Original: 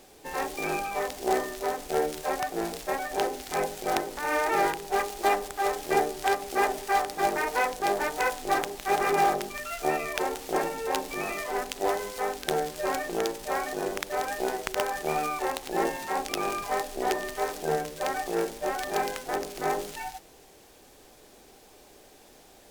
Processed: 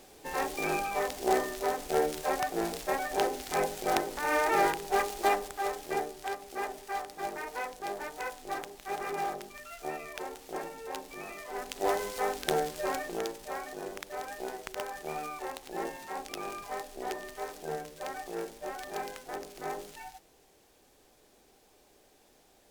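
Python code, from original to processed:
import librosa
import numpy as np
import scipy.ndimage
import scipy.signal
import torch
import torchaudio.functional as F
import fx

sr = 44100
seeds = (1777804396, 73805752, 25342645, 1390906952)

y = fx.gain(x, sr, db=fx.line((5.12, -1.0), (6.27, -10.5), (11.43, -10.5), (11.92, -1.0), (12.55, -1.0), (13.62, -9.0)))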